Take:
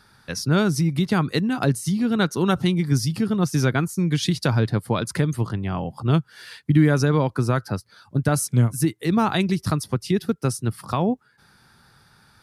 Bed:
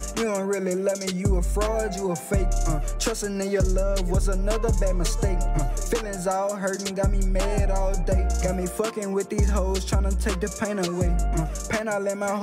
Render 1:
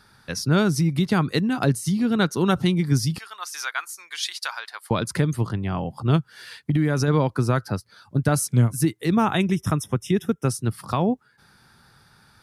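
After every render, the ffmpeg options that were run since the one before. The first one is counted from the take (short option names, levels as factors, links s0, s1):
-filter_complex "[0:a]asettb=1/sr,asplit=3[s0][s1][s2];[s0]atrim=end=3.184[s3];[s1]atrim=start=3.18:end=4.91,asetpts=PTS-STARTPTS,afade=t=in:d=0.004:c=qsin,afade=t=out:st=1.726:d=0.004:c=qsin,highpass=f=960:w=0.5412,highpass=f=960:w=1.3066[s4];[s2]atrim=start=4.906[s5];[s3][s4]acrossfade=d=0.004:c1=hsin:c2=qsin[s6];[s6][s5]acrossfade=d=0.004:c1=qsin:c2=hsin,asettb=1/sr,asplit=3[s7][s8][s9];[s7]atrim=end=6.164[s10];[s8]atrim=start=6.16:end=7.08,asetpts=PTS-STARTPTS,afade=t=in:d=0.004:c=qsin,afade=t=out:st=0.916:d=0.004:c=qsin,acompressor=threshold=0.158:ratio=6:attack=3.2:release=140:knee=1:detection=peak[s11];[s9]atrim=start=7.076[s12];[s10][s11]acrossfade=d=0.004:c1=hsin:c2=qsin[s13];[s13][s12]acrossfade=d=0.004:c1=qsin:c2=hsin,asettb=1/sr,asplit=3[s14][s15][s16];[s14]atrim=end=9.124[s17];[s15]atrim=start=9.12:end=10.48,asetpts=PTS-STARTPTS,afade=t=in:d=0.004:c=qsin,afade=t=out:st=1.356:d=0.004:c=qsin,asuperstop=centerf=4400:order=12:qfactor=3.2[s18];[s16]atrim=start=10.476[s19];[s17][s18]acrossfade=d=0.004:c1=hsin:c2=qsin[s20];[s20][s19]acrossfade=d=0.004:c1=qsin:c2=hsin"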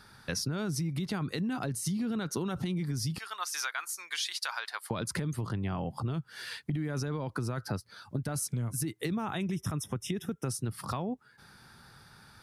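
-af "alimiter=limit=0.119:level=0:latency=1:release=25,acompressor=threshold=0.0316:ratio=6"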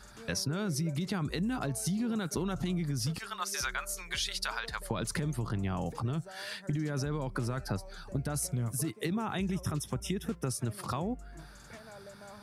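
-filter_complex "[1:a]volume=0.0596[s0];[0:a][s0]amix=inputs=2:normalize=0"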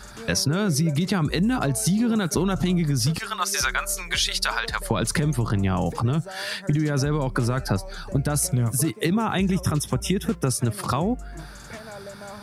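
-af "volume=3.35"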